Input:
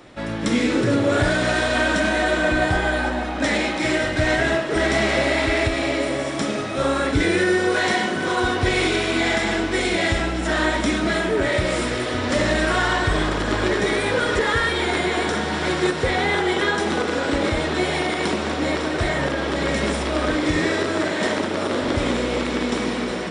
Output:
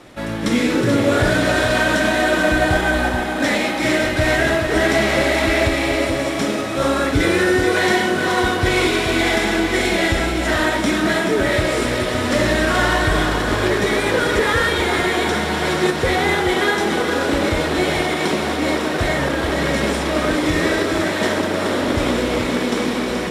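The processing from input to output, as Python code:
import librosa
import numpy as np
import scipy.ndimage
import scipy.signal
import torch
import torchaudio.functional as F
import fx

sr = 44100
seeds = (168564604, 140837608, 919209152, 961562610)

y = fx.cvsd(x, sr, bps=64000)
y = y + 10.0 ** (-7.0 / 20.0) * np.pad(y, (int(430 * sr / 1000.0), 0))[:len(y)]
y = y * 10.0 ** (2.5 / 20.0)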